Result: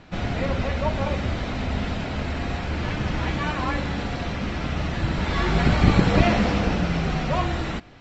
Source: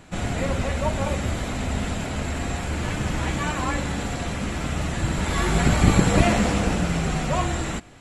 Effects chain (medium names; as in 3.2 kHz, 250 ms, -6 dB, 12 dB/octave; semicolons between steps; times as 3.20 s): steep low-pass 5.6 kHz 36 dB/octave